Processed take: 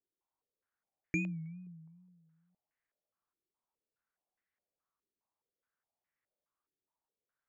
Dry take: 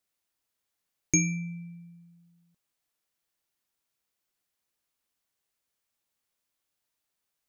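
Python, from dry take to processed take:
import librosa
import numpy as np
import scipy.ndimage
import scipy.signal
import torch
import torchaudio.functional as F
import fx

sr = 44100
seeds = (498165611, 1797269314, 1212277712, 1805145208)

y = fx.wow_flutter(x, sr, seeds[0], rate_hz=2.1, depth_cents=110.0)
y = fx.filter_held_lowpass(y, sr, hz=4.8, low_hz=380.0, high_hz=1900.0)
y = F.gain(torch.from_numpy(y), -8.0).numpy()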